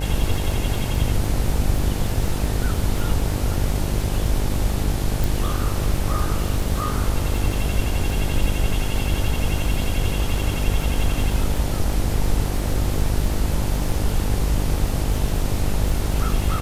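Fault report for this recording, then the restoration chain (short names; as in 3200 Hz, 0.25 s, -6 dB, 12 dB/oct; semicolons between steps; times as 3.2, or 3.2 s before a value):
buzz 50 Hz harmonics 18 -25 dBFS
crackle 39/s -27 dBFS
5.24 pop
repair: de-click; de-hum 50 Hz, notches 18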